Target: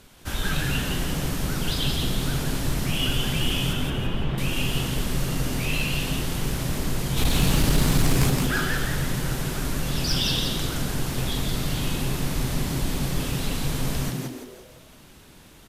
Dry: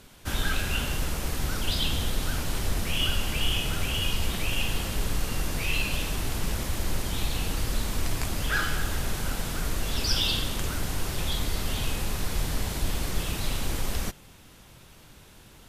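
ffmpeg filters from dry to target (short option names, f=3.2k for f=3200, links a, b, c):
-filter_complex "[0:a]asettb=1/sr,asplit=3[a][b][c];[a]atrim=end=3.734[d];[b]atrim=start=3.73:end=4.38,asetpts=PTS-STARTPTS,afade=t=in:d=0.004:c=qsin,afade=t=out:st=0.646:d=0.004:c=qsin,lowpass=1.9k[e];[c]atrim=start=4.376[f];[d][e]acrossfade=d=0.004:c1=hsin:c2=qsin[g];[g][f]acrossfade=d=0.004:c1=qsin:c2=hsin,asplit=3[h][i][j];[h]afade=t=out:st=7.16:d=0.02[k];[i]acontrast=67,afade=t=in:st=7.16:d=0.02,afade=t=out:st=8.29:d=0.02[l];[j]afade=t=in:st=8.29:d=0.02[m];[k][l][m]amix=inputs=3:normalize=0,volume=15dB,asoftclip=hard,volume=-15dB,asplit=6[n][o][p][q][r][s];[o]adelay=169,afreqshift=120,volume=-4dB[t];[p]adelay=338,afreqshift=240,volume=-11.5dB[u];[q]adelay=507,afreqshift=360,volume=-19.1dB[v];[r]adelay=676,afreqshift=480,volume=-26.6dB[w];[s]adelay=845,afreqshift=600,volume=-34.1dB[x];[n][t][u][v][w][x]amix=inputs=6:normalize=0"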